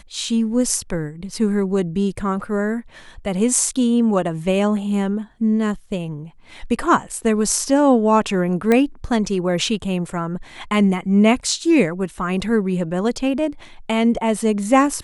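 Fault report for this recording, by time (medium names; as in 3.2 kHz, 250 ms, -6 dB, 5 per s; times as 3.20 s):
8.72 s: pop -6 dBFS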